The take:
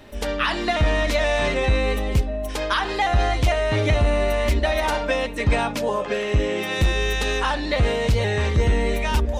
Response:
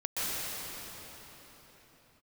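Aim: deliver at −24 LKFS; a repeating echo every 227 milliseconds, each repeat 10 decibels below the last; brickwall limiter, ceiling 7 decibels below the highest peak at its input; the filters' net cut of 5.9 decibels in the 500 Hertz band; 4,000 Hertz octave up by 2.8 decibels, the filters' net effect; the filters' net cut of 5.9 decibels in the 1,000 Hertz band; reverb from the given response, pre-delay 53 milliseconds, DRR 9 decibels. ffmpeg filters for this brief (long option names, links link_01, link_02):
-filter_complex "[0:a]equalizer=frequency=500:width_type=o:gain=-5.5,equalizer=frequency=1000:width_type=o:gain=-6,equalizer=frequency=4000:width_type=o:gain=4,alimiter=limit=-17.5dB:level=0:latency=1,aecho=1:1:227|454|681|908:0.316|0.101|0.0324|0.0104,asplit=2[link_01][link_02];[1:a]atrim=start_sample=2205,adelay=53[link_03];[link_02][link_03]afir=irnorm=-1:irlink=0,volume=-18dB[link_04];[link_01][link_04]amix=inputs=2:normalize=0,volume=1.5dB"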